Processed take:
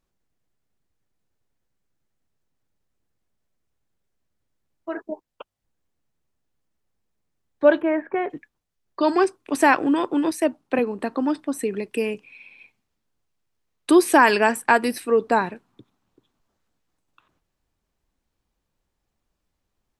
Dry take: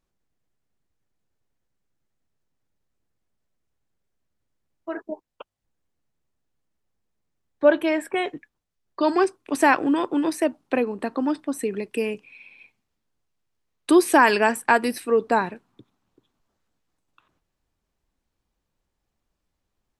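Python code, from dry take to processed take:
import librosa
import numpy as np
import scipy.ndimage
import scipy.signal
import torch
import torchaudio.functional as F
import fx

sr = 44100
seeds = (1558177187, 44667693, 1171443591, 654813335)

y = fx.lowpass(x, sr, hz=1900.0, slope=24, at=(7.8, 8.29), fade=0.02)
y = fx.band_widen(y, sr, depth_pct=40, at=(10.31, 10.79))
y = F.gain(torch.from_numpy(y), 1.0).numpy()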